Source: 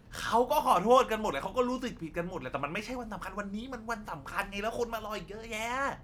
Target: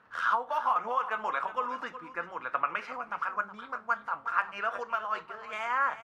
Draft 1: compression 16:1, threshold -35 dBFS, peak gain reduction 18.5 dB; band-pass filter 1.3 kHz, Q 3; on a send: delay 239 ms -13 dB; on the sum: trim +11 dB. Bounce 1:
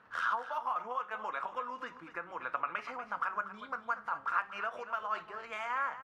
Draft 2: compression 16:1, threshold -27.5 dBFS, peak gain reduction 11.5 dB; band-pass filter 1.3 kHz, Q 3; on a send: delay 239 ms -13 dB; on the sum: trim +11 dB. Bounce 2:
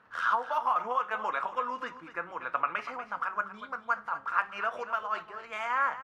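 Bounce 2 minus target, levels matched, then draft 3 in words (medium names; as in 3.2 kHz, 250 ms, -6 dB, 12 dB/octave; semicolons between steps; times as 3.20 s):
echo 128 ms early
compression 16:1, threshold -27.5 dBFS, peak gain reduction 11.5 dB; band-pass filter 1.3 kHz, Q 3; on a send: delay 367 ms -13 dB; on the sum: trim +11 dB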